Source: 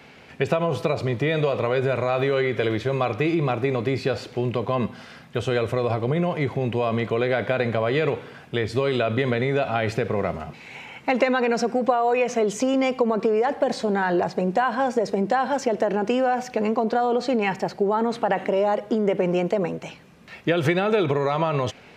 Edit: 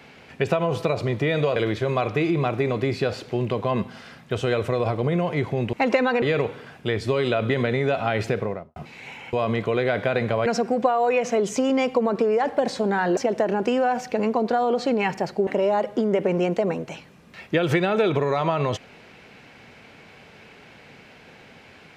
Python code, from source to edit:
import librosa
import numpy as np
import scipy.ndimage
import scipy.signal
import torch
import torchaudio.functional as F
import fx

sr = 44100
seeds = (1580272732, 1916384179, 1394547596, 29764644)

y = fx.studio_fade_out(x, sr, start_s=10.01, length_s=0.43)
y = fx.edit(y, sr, fx.cut(start_s=1.56, length_s=1.04),
    fx.swap(start_s=6.77, length_s=1.13, other_s=11.01, other_length_s=0.49),
    fx.cut(start_s=14.21, length_s=1.38),
    fx.cut(start_s=17.89, length_s=0.52), tone=tone)